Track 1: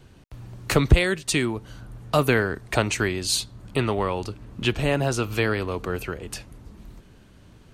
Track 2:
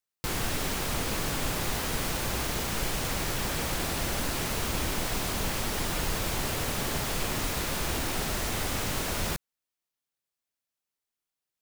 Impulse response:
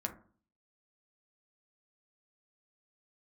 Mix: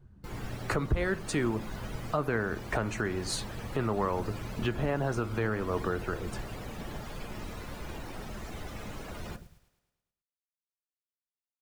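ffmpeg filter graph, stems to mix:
-filter_complex "[0:a]highshelf=f=2k:t=q:w=1.5:g=-8,volume=-4dB,asplit=2[a][b];[b]volume=-8.5dB[c];[1:a]volume=-11dB,asplit=3[d][e][f];[e]volume=-9dB[g];[f]volume=-7dB[h];[2:a]atrim=start_sample=2205[i];[c][g]amix=inputs=2:normalize=0[j];[j][i]afir=irnorm=-1:irlink=0[k];[h]aecho=0:1:107|214|321|428|535|642|749|856:1|0.56|0.314|0.176|0.0983|0.0551|0.0308|0.0173[l];[a][d][k][l]amix=inputs=4:normalize=0,afftdn=nr=14:nf=-42,alimiter=limit=-18.5dB:level=0:latency=1:release=289"

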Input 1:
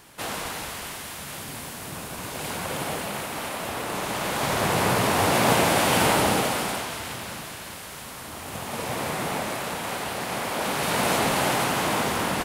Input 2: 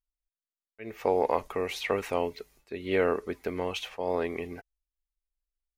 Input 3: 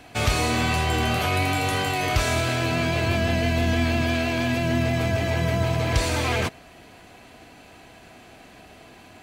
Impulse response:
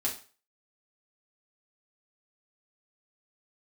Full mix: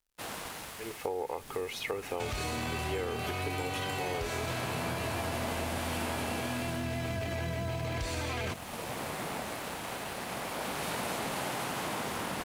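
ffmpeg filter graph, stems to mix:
-filter_complex "[0:a]aeval=exprs='sgn(val(0))*max(abs(val(0))-0.00708,0)':c=same,volume=-7dB[a];[1:a]aecho=1:1:2.4:0.5,volume=-3dB[b];[2:a]alimiter=limit=-21.5dB:level=0:latency=1,adelay=2050,volume=0dB[c];[a][b][c]amix=inputs=3:normalize=0,acompressor=threshold=-31dB:ratio=6"

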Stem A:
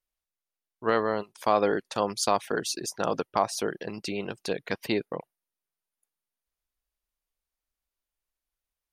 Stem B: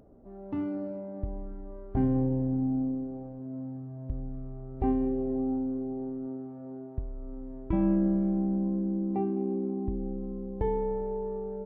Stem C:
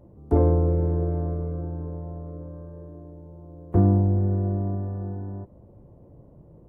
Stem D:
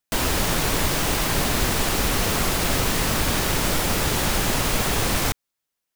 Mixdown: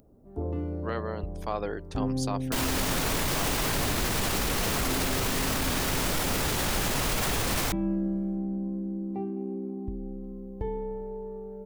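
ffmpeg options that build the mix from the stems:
-filter_complex "[0:a]volume=-8.5dB[a];[1:a]tiltshelf=f=680:g=4.5,crystalizer=i=7:c=0,volume=-7dB[b];[2:a]equalizer=f=1.8k:t=o:w=0.69:g=-14,adelay=50,volume=-13.5dB[c];[3:a]adelay=2400,volume=-0.5dB[d];[a][b][c][d]amix=inputs=4:normalize=0,alimiter=limit=-18.5dB:level=0:latency=1:release=20"

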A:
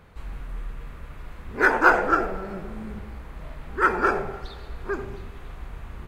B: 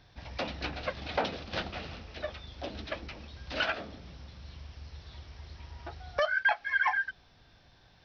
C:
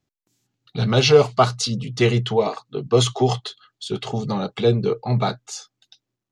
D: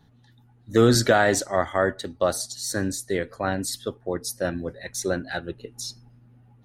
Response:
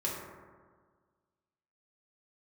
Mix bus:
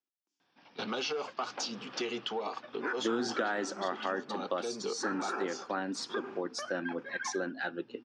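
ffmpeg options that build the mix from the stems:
-filter_complex "[0:a]adelay=1250,volume=0.5dB[a];[1:a]adelay=400,volume=-7.5dB[b];[2:a]bass=f=250:g=-11,treble=f=4k:g=5,acontrast=68,volume=-9.5dB,asplit=2[c][d];[3:a]adelay=2300,volume=2.5dB[e];[d]apad=whole_len=322908[f];[a][f]sidechaincompress=threshold=-32dB:ratio=8:attack=29:release=178[g];[g][c]amix=inputs=2:normalize=0,agate=range=-11dB:threshold=-33dB:ratio=16:detection=peak,alimiter=limit=-17.5dB:level=0:latency=1:release=66,volume=0dB[h];[b][e][h]amix=inputs=3:normalize=0,highpass=f=230:w=0.5412,highpass=f=230:w=1.3066,equalizer=f=430:t=q:w=4:g=-5,equalizer=f=630:t=q:w=4:g=-8,equalizer=f=2k:t=q:w=4:g=-6,equalizer=f=4k:t=q:w=4:g=-9,lowpass=f=5.3k:w=0.5412,lowpass=f=5.3k:w=1.3066,acompressor=threshold=-33dB:ratio=3"

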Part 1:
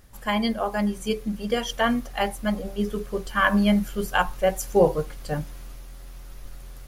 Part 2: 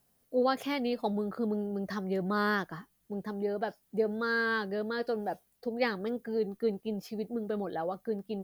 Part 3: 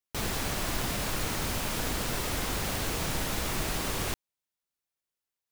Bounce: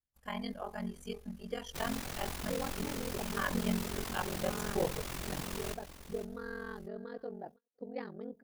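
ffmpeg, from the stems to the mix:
-filter_complex "[0:a]volume=-12.5dB,asplit=2[a][b];[b]volume=-23.5dB[c];[1:a]tiltshelf=f=1.4k:g=6.5,adelay=2150,volume=-12.5dB,asplit=2[d][e];[e]volume=-22.5dB[f];[2:a]alimiter=level_in=1dB:limit=-24dB:level=0:latency=1:release=26,volume=-1dB,adelay=1600,volume=-4dB,asplit=2[g][h];[h]volume=-12.5dB[i];[c][f][i]amix=inputs=3:normalize=0,aecho=0:1:508:1[j];[a][d][g][j]amix=inputs=4:normalize=0,agate=range=-28dB:threshold=-52dB:ratio=16:detection=peak,aeval=exprs='val(0)*sin(2*PI*22*n/s)':c=same"

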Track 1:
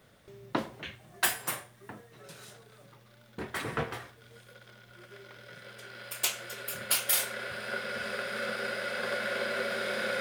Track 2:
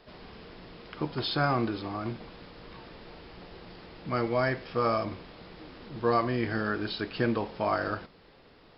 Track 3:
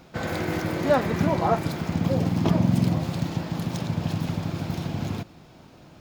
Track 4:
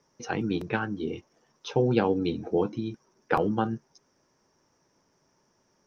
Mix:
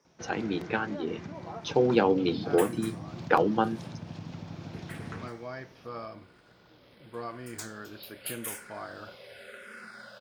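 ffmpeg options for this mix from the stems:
-filter_complex "[0:a]asplit=2[a][b];[b]afreqshift=-0.86[c];[a][c]amix=inputs=2:normalize=1,adelay=1350,volume=-12.5dB[d];[1:a]adelay=1100,volume=-16.5dB[e];[2:a]lowpass=f=6.6k:w=0.5412,lowpass=f=6.6k:w=1.3066,acompressor=threshold=-25dB:ratio=10,adelay=50,volume=-13.5dB[f];[3:a]equalizer=f=93:t=o:w=1.6:g=-11.5,volume=-0.5dB[g];[d][e][f][g]amix=inputs=4:normalize=0,highpass=57,dynaudnorm=f=260:g=11:m=3.5dB"

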